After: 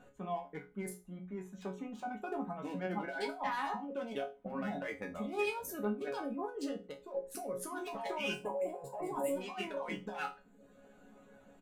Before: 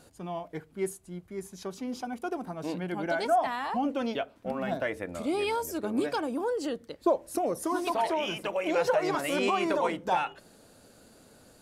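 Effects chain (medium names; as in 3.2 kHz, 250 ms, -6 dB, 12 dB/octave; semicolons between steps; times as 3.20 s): local Wiener filter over 9 samples; time-frequency box 8.34–9.41 s, 1.1–7 kHz -17 dB; reverb removal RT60 0.73 s; hum notches 60/120/180/240/300/360/420/480/540 Hz; comb 4 ms, depth 39%; compressor with a negative ratio -34 dBFS, ratio -1; chord resonator C#3 sus4, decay 0.26 s; trim +9.5 dB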